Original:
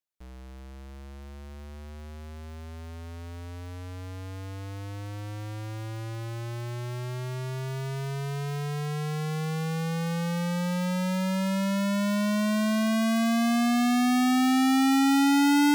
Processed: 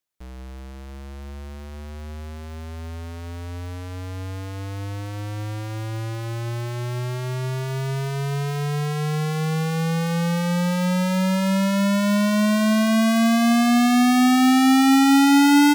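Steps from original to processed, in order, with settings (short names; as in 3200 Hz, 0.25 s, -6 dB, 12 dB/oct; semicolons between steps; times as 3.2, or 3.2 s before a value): feedback echo 0.172 s, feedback 45%, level -18.5 dB; gain +6.5 dB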